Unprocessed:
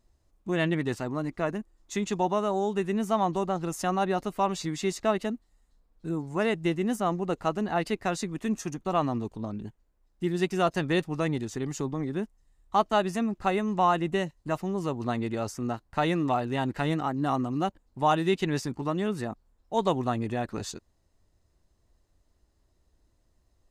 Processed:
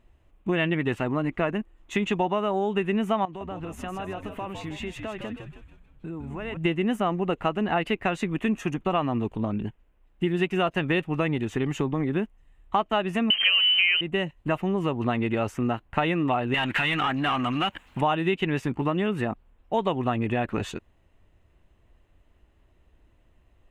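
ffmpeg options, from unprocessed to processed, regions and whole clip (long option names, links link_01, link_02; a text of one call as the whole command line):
ffmpeg -i in.wav -filter_complex "[0:a]asettb=1/sr,asplit=3[link_01][link_02][link_03];[link_01]atrim=end=3.254[link_04];[link_02]atrim=start=3.25:end=6.57,asetpts=PTS-STARTPTS,afade=type=in:duration=0.004:curve=qsin,afade=type=out:start_time=3.316:duration=0.004:curve=qsin,acompressor=threshold=-41dB:ratio=4:attack=3.2:release=140:knee=1:detection=peak,asplit=6[link_05][link_06][link_07][link_08][link_09][link_10];[link_06]adelay=157,afreqshift=-93,volume=-6.5dB[link_11];[link_07]adelay=314,afreqshift=-186,volume=-13.6dB[link_12];[link_08]adelay=471,afreqshift=-279,volume=-20.8dB[link_13];[link_09]adelay=628,afreqshift=-372,volume=-27.9dB[link_14];[link_10]adelay=785,afreqshift=-465,volume=-35dB[link_15];[link_05][link_11][link_12][link_13][link_14][link_15]amix=inputs=6:normalize=0,atrim=end_sample=146412[link_16];[link_03]atrim=start=6.566[link_17];[link_04][link_16]acrossfade=duration=0.004:curve1=hsin:curve2=qsin[link_18];[link_18][link_17]acrossfade=duration=0.004:curve1=qsin:curve2=hsin,asettb=1/sr,asplit=3[link_19][link_20][link_21];[link_19]atrim=end=13.304[link_22];[link_20]atrim=start=13.3:end=14.01,asetpts=PTS-STARTPTS,afade=type=in:duration=0.004:curve=qsin,afade=type=out:start_time=0.706:duration=0.004:curve=qsin,aeval=exprs='val(0)+0.5*0.0355*sgn(val(0))':channel_layout=same,lowshelf=frequency=410:gain=7,lowpass=frequency=2700:width_type=q:width=0.5098,lowpass=frequency=2700:width_type=q:width=0.6013,lowpass=frequency=2700:width_type=q:width=0.9,lowpass=frequency=2700:width_type=q:width=2.563,afreqshift=-3200[link_23];[link_21]atrim=start=14.006[link_24];[link_22][link_23]acrossfade=duration=0.004:curve1=hsin:curve2=qsin[link_25];[link_25][link_24]acrossfade=duration=0.004:curve1=qsin:curve2=hsin,asettb=1/sr,asplit=3[link_26][link_27][link_28];[link_26]atrim=end=16.544[link_29];[link_27]atrim=start=16.54:end=18.01,asetpts=PTS-STARTPTS,afade=type=in:duration=0.004:curve=qsin,afade=type=out:start_time=1.466:duration=0.004:curve=qsin,equalizer=frequency=460:width=0.57:gain=-13.5,acompressor=threshold=-43dB:ratio=5:attack=3.2:release=140:knee=1:detection=peak,asplit=2[link_30][link_31];[link_31]highpass=frequency=720:poles=1,volume=30dB,asoftclip=type=tanh:threshold=-22dB[link_32];[link_30][link_32]amix=inputs=2:normalize=0,lowpass=frequency=6000:poles=1,volume=-6dB[link_33];[link_28]atrim=start=18.006[link_34];[link_29][link_33]acrossfade=duration=0.004:curve1=hsin:curve2=qsin[link_35];[link_35][link_34]acrossfade=duration=0.004:curve1=qsin:curve2=hsin,highshelf=frequency=3700:width_type=q:width=3:gain=-9.5,acompressor=threshold=-29dB:ratio=4,volume=7.5dB" out.wav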